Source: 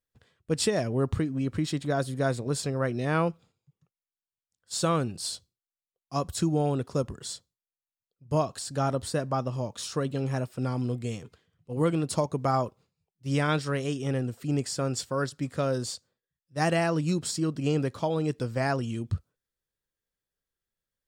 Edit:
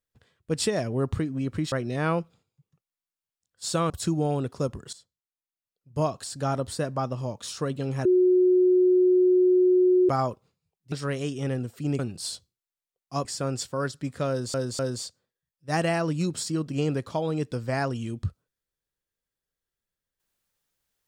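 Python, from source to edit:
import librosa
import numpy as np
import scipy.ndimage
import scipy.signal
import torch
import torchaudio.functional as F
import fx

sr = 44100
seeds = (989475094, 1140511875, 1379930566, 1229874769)

y = fx.edit(x, sr, fx.cut(start_s=1.72, length_s=1.09),
    fx.move(start_s=4.99, length_s=1.26, to_s=14.63),
    fx.fade_in_from(start_s=7.28, length_s=1.1, floor_db=-16.0),
    fx.bleep(start_s=10.4, length_s=2.04, hz=365.0, db=-16.0),
    fx.cut(start_s=13.27, length_s=0.29),
    fx.repeat(start_s=15.67, length_s=0.25, count=3), tone=tone)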